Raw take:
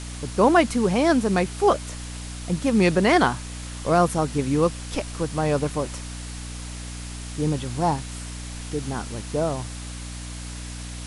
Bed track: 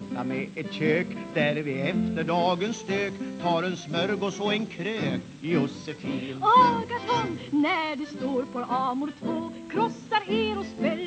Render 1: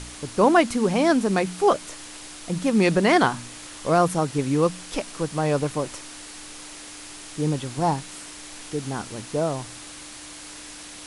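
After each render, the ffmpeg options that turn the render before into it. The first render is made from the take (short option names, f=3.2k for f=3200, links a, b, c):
-af "bandreject=f=60:t=h:w=4,bandreject=f=120:t=h:w=4,bandreject=f=180:t=h:w=4,bandreject=f=240:t=h:w=4"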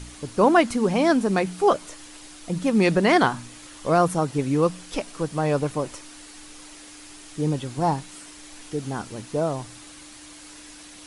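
-af "afftdn=nr=6:nf=-41"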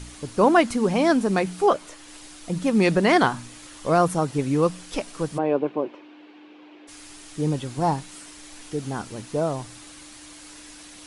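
-filter_complex "[0:a]asettb=1/sr,asplit=3[a][b][c];[a]atrim=end=1.664[d];[b]atrim=start=1.66:end=2.08,asetpts=PTS-STARTPTS,afade=t=in:d=0.004:c=qsin,afade=t=out:st=0.416:d=0.004:c=qsin,bass=f=250:g=-4,treble=f=4k:g=-4[e];[c]atrim=start=2.076[f];[d][e]acrossfade=d=0.004:c1=hsin:c2=qsin[g];[g][f]acrossfade=d=0.004:c1=qsin:c2=hsin,asplit=3[h][i][j];[h]afade=t=out:st=5.37:d=0.02[k];[i]highpass=f=210:w=0.5412,highpass=f=210:w=1.3066,equalizer=f=360:t=q:w=4:g=8,equalizer=f=1.3k:t=q:w=4:g=-7,equalizer=f=1.9k:t=q:w=4:g=-8,lowpass=f=2.7k:w=0.5412,lowpass=f=2.7k:w=1.3066,afade=t=in:st=5.37:d=0.02,afade=t=out:st=6.87:d=0.02[l];[j]afade=t=in:st=6.87:d=0.02[m];[k][l][m]amix=inputs=3:normalize=0"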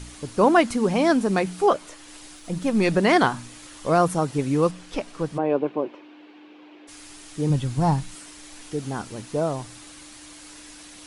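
-filter_complex "[0:a]asettb=1/sr,asplit=3[a][b][c];[a]atrim=end=2.364[d];[b]atrim=start=2.36:end=2.94,asetpts=PTS-STARTPTS,afade=t=in:d=0.004:c=qsin,afade=t=out:st=0.576:d=0.004:c=qsin,aeval=exprs='if(lt(val(0),0),0.708*val(0),val(0))':c=same[e];[c]atrim=start=2.936[f];[d][e]acrossfade=d=0.004:c1=hsin:c2=qsin[g];[g][f]acrossfade=d=0.004:c1=qsin:c2=hsin,asettb=1/sr,asplit=3[h][i][j];[h]atrim=end=4.714[k];[i]atrim=start=4.71:end=5.5,asetpts=PTS-STARTPTS,afade=t=in:d=0.004:c=qsin,afade=t=out:st=0.786:d=0.004:c=qsin,lowpass=f=3.5k:p=1[l];[j]atrim=start=5.496[m];[k][l]acrossfade=d=0.004:c1=hsin:c2=qsin[n];[n][m]acrossfade=d=0.004:c1=qsin:c2=hsin,asplit=3[o][p][q];[o]afade=t=out:st=7.49:d=0.02[r];[p]asubboost=boost=3.5:cutoff=180,afade=t=in:st=7.49:d=0.02,afade=t=out:st=8.14:d=0.02[s];[q]afade=t=in:st=8.14:d=0.02[t];[r][s][t]amix=inputs=3:normalize=0"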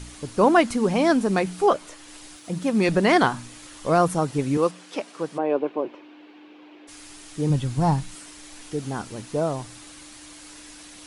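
-filter_complex "[0:a]asettb=1/sr,asplit=3[a][b][c];[a]atrim=end=2.364[d];[b]atrim=start=2.36:end=2.89,asetpts=PTS-STARTPTS,afade=t=in:d=0.004:c=qsin,afade=t=out:st=0.526:d=0.004:c=qsin,highpass=83[e];[c]atrim=start=2.886[f];[d][e]acrossfade=d=0.004:c1=hsin:c2=qsin[g];[g][f]acrossfade=d=0.004:c1=qsin:c2=hsin,asettb=1/sr,asplit=3[h][i][j];[h]atrim=end=4.574[k];[i]atrim=start=4.57:end=5.85,asetpts=PTS-STARTPTS,afade=t=in:d=0.004:c=qsin,afade=t=out:st=1.276:d=0.004:c=qsin,highpass=260[l];[j]atrim=start=5.846[m];[k][l]acrossfade=d=0.004:c1=hsin:c2=qsin[n];[n][m]acrossfade=d=0.004:c1=qsin:c2=hsin"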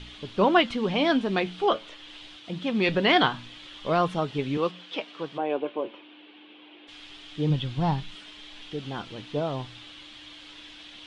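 -af "lowpass=f=3.3k:t=q:w=4.5,flanger=delay=4.7:depth=4.6:regen=73:speed=0.24:shape=sinusoidal"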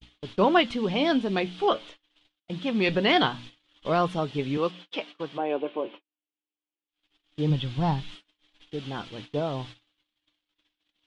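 -af "agate=range=-49dB:threshold=-41dB:ratio=16:detection=peak,adynamicequalizer=threshold=0.0141:dfrequency=1400:dqfactor=0.9:tfrequency=1400:tqfactor=0.9:attack=5:release=100:ratio=0.375:range=2.5:mode=cutabove:tftype=bell"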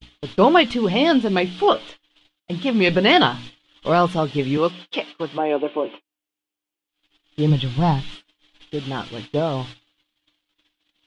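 -af "volume=7dB,alimiter=limit=-2dB:level=0:latency=1"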